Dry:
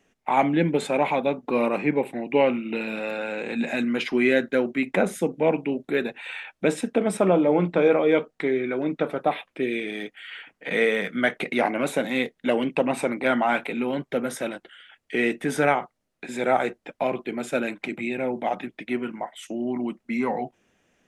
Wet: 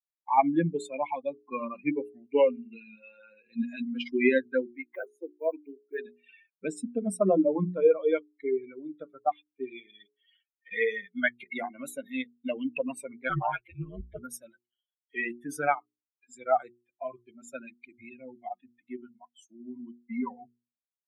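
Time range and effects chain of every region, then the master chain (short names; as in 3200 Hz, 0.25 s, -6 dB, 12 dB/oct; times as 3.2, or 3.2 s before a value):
4.7–5.99 block floating point 7-bit + Chebyshev high-pass 300 Hz, order 4 + high shelf 4700 Hz -12 dB
13.29–14.19 comb 7.3 ms, depth 90% + ring modulator 92 Hz
whole clip: per-bin expansion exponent 3; bell 4400 Hz -10.5 dB 0.75 oct; notches 60/120/180/240/300/360/420 Hz; gain +2.5 dB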